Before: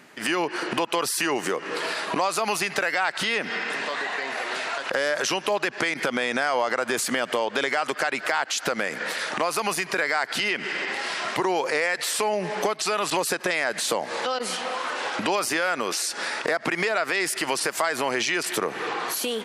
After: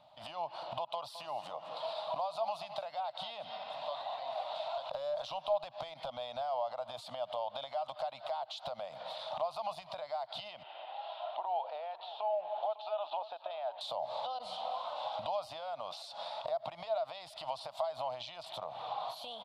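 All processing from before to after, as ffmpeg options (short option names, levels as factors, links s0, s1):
-filter_complex "[0:a]asettb=1/sr,asplit=3[s0][s1][s2];[s0]atrim=end=0.844[s3];[s1]atrim=start=0.84:end=3.67,asetpts=PTS-STARTPTS,afade=t=in:d=0.004:c=qsin,afade=t=out:st=2.826:d=0.004:c=qsin,highpass=120,aecho=1:1:214:0.2,atrim=end_sample=124803[s4];[s2]atrim=start=3.666[s5];[s3][s4]acrossfade=d=0.004:c1=hsin:c2=qsin[s6];[s6][s5]acrossfade=d=0.004:c1=qsin:c2=hsin,asettb=1/sr,asplit=3[s7][s8][s9];[s7]atrim=end=4.254[s10];[s8]atrim=start=4.25:end=6.41,asetpts=PTS-STARTPTS,afade=t=in:d=0.004:c=qsin,afade=t=out:st=2.156:d=0.004:c=qsin,highpass=110,asoftclip=type=hard:threshold=0.126[s11];[s9]atrim=start=6.406[s12];[s10][s11]acrossfade=d=0.004:c1=hsin:c2=qsin[s13];[s13][s12]acrossfade=d=0.004:c1=qsin:c2=hsin,asettb=1/sr,asplit=3[s14][s15][s16];[s14]atrim=end=10.634[s17];[s15]atrim=start=10.63:end=13.81,asetpts=PTS-STARTPTS,afade=t=in:d=0.004:c=qsin,afade=t=out:st=3.176:d=0.004:c=qsin,highpass=f=380:w=0.5412,highpass=f=380:w=1.3066,equalizer=f=560:t=q:w=4:g=-7,equalizer=f=1100:t=q:w=4:g=-8,equalizer=f=2100:t=q:w=4:g=-9,lowpass=f=3000:w=0.5412,lowpass=f=3000:w=1.3066,aecho=1:1:552:0.168,atrim=end_sample=140238[s18];[s16]atrim=start=13.806[s19];[s17][s18]acrossfade=d=0.004:c1=hsin:c2=qsin[s20];[s20][s19]acrossfade=d=0.004:c1=qsin:c2=hsin,equalizer=f=390:t=o:w=0.28:g=-8.5,acompressor=threshold=0.0501:ratio=6,firequalizer=gain_entry='entry(110,0);entry(210,-18);entry(410,-26);entry(620,7);entry(1000,-2);entry(1700,-27);entry(3600,0);entry(6100,-24)':delay=0.05:min_phase=1,volume=0.531"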